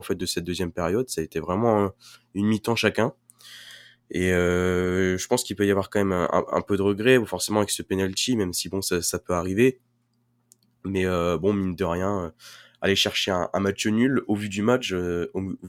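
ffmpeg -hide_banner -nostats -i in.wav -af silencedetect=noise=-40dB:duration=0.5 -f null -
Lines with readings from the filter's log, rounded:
silence_start: 9.73
silence_end: 10.52 | silence_duration: 0.79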